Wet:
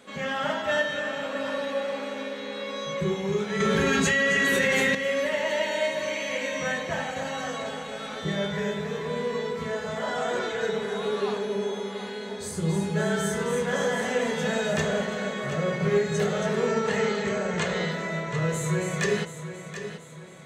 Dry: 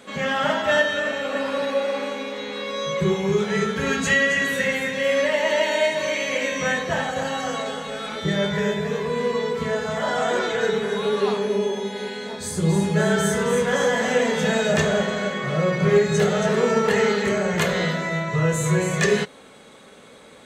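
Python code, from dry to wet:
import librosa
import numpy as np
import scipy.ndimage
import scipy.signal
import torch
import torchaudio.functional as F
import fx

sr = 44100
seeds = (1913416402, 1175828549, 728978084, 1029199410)

y = fx.brickwall_lowpass(x, sr, high_hz=8600.0, at=(16.66, 17.92))
y = fx.echo_feedback(y, sr, ms=729, feedback_pct=43, wet_db=-11.0)
y = fx.env_flatten(y, sr, amount_pct=100, at=(3.6, 4.95))
y = y * librosa.db_to_amplitude(-6.0)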